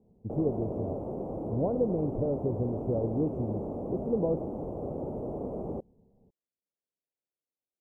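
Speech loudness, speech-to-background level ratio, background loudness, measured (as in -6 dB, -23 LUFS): -32.5 LUFS, 4.0 dB, -36.5 LUFS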